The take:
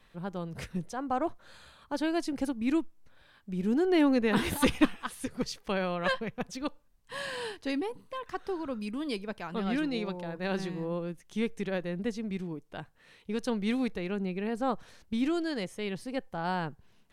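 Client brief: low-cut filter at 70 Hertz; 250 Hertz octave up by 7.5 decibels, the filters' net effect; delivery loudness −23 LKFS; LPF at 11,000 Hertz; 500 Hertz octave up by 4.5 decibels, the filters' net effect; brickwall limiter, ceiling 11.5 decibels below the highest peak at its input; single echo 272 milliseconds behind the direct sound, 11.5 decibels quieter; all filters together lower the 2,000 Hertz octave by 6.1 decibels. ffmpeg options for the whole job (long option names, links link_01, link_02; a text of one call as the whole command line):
ffmpeg -i in.wav -af "highpass=70,lowpass=11000,equalizer=frequency=250:width_type=o:gain=8.5,equalizer=frequency=500:width_type=o:gain=3,equalizer=frequency=2000:width_type=o:gain=-8.5,alimiter=limit=-17dB:level=0:latency=1,aecho=1:1:272:0.266,volume=5dB" out.wav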